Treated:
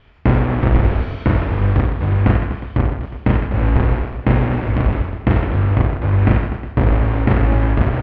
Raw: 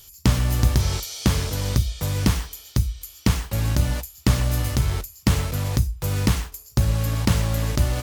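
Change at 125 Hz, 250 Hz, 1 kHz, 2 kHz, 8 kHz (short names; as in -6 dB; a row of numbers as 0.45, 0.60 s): +6.0 dB, +7.0 dB, +9.5 dB, +6.5 dB, under -35 dB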